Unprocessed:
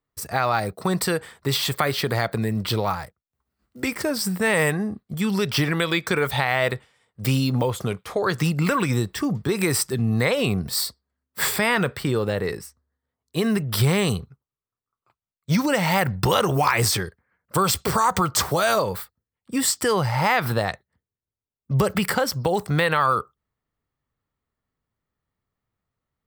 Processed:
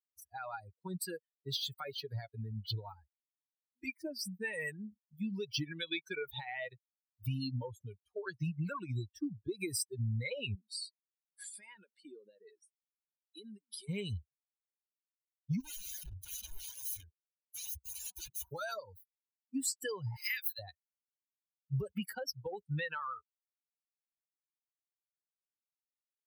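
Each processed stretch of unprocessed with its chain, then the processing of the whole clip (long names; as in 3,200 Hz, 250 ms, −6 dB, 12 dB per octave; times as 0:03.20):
0:10.55–0:13.89: linear-phase brick-wall band-pass 180–11,000 Hz + high-shelf EQ 7,700 Hz +7.5 dB + downward compressor 4 to 1, threshold −24 dBFS
0:15.60–0:18.48: mains-hum notches 60/120/180/240/300/360/420 Hz + wrap-around overflow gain 20.5 dB
0:20.16–0:20.59: high-pass filter 1,400 Hz 24 dB per octave + spectral tilt +3 dB per octave
whole clip: spectral dynamics exaggerated over time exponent 3; downward compressor, threshold −28 dBFS; parametric band 820 Hz −9.5 dB 1.6 octaves; level −3 dB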